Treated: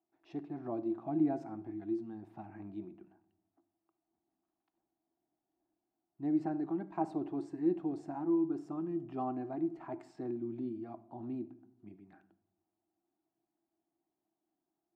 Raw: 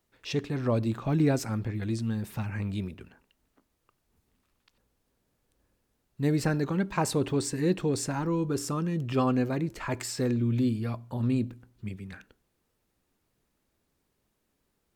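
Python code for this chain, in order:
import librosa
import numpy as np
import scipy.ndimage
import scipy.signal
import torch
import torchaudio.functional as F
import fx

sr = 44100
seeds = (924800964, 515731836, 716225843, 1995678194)

y = fx.double_bandpass(x, sr, hz=490.0, octaves=1.1)
y = fx.room_shoebox(y, sr, seeds[0], volume_m3=1900.0, walls='furnished', distance_m=0.63)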